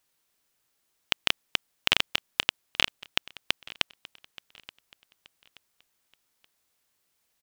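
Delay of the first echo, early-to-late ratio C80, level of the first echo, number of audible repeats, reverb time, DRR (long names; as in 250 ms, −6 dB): 877 ms, no reverb audible, −20.0 dB, 2, no reverb audible, no reverb audible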